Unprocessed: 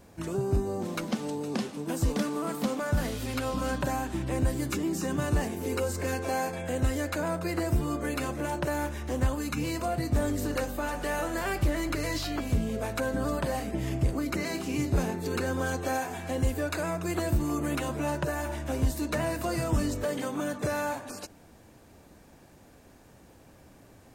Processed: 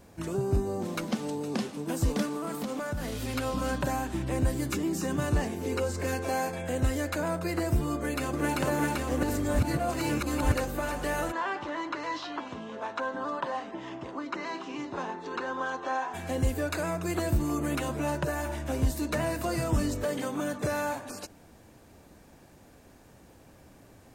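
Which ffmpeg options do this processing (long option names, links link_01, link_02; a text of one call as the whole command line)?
ffmpeg -i in.wav -filter_complex "[0:a]asettb=1/sr,asplit=3[link_01][link_02][link_03];[link_01]atrim=end=2.254[link_04];[link_02]atrim=start=2.25:end=3.21,asetpts=PTS-STARTPTS,afade=type=in:duration=0.004:curve=qsin,afade=type=out:start_time=0.956:duration=0.004:curve=qsin,acompressor=threshold=-29dB:ratio=6:attack=3.2:release=140:knee=1:detection=peak[link_05];[link_03]atrim=start=3.206[link_06];[link_04][link_05]acrossfade=duration=0.004:curve1=hsin:curve2=qsin[link_07];[link_07][link_06]acrossfade=duration=0.004:curve1=qsin:curve2=hsin,asettb=1/sr,asplit=3[link_08][link_09][link_10];[link_08]atrim=end=5.324[link_11];[link_09]atrim=start=5.32:end=6.02,asetpts=PTS-STARTPTS,afade=type=in:duration=0.004:curve=qsin,afade=type=out:start_time=0.696:duration=0.004:curve=qsin,acrossover=split=8100[link_12][link_13];[link_13]acompressor=threshold=-54dB:ratio=4:attack=1:release=60[link_14];[link_12][link_14]amix=inputs=2:normalize=0[link_15];[link_10]atrim=start=6.016[link_16];[link_11][link_15]acrossfade=duration=0.004:curve1=hsin:curve2=qsin[link_17];[link_17][link_16]acrossfade=duration=0.004:curve1=qsin:curve2=hsin,asplit=2[link_18][link_19];[link_19]afade=type=in:start_time=7.94:duration=0.01,afade=type=out:start_time=8.59:duration=0.01,aecho=0:1:390|780|1170|1560|1950|2340|2730|3120|3510|3900|4290|4680:1|0.8|0.64|0.512|0.4096|0.32768|0.262144|0.209715|0.167772|0.134218|0.107374|0.0858993[link_20];[link_18][link_20]amix=inputs=2:normalize=0,asplit=3[link_21][link_22][link_23];[link_21]afade=type=out:start_time=11.31:duration=0.02[link_24];[link_22]highpass=390,equalizer=frequency=450:width_type=q:width=4:gain=-5,equalizer=frequency=640:width_type=q:width=4:gain=-4,equalizer=frequency=1000:width_type=q:width=4:gain=9,equalizer=frequency=2300:width_type=q:width=4:gain=-7,equalizer=frequency=4600:width_type=q:width=4:gain=-9,lowpass=frequency=5000:width=0.5412,lowpass=frequency=5000:width=1.3066,afade=type=in:start_time=11.31:duration=0.02,afade=type=out:start_time=16.13:duration=0.02[link_25];[link_23]afade=type=in:start_time=16.13:duration=0.02[link_26];[link_24][link_25][link_26]amix=inputs=3:normalize=0,asplit=3[link_27][link_28][link_29];[link_27]atrim=end=9.232[link_30];[link_28]atrim=start=9.228:end=10.522,asetpts=PTS-STARTPTS,areverse[link_31];[link_29]atrim=start=10.518[link_32];[link_30][link_31]acrossfade=duration=0.004:curve1=hsin:curve2=hsin[link_33];[link_33][link_32]acrossfade=duration=0.004:curve1=hsin:curve2=hsin" out.wav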